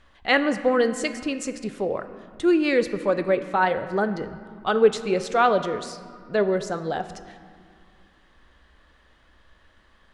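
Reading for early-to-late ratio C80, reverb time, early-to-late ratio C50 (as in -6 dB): 12.5 dB, 2.2 s, 11.5 dB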